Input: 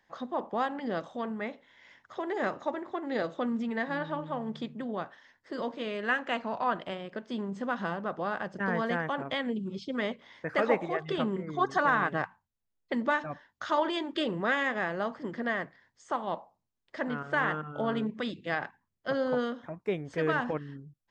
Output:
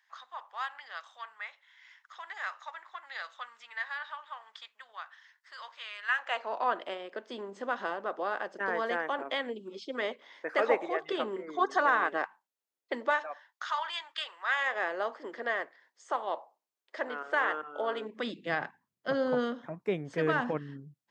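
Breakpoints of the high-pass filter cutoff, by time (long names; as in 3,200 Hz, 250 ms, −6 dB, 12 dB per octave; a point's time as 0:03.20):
high-pass filter 24 dB per octave
0:06.08 1,100 Hz
0:06.57 320 Hz
0:12.94 320 Hz
0:13.73 1,000 Hz
0:14.44 1,000 Hz
0:14.85 370 Hz
0:18.00 370 Hz
0:18.65 120 Hz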